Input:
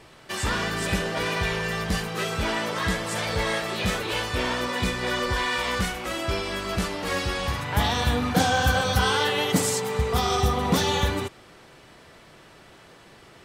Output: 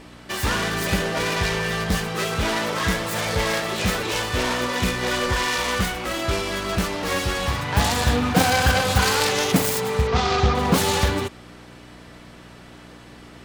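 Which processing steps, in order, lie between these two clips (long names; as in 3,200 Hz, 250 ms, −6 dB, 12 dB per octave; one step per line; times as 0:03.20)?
phase distortion by the signal itself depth 0.26 ms
0:10.07–0:10.55: inverse Chebyshev low-pass filter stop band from 12,000 Hz, stop band 50 dB
hum with harmonics 60 Hz, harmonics 5, −51 dBFS 0 dB per octave
level +4 dB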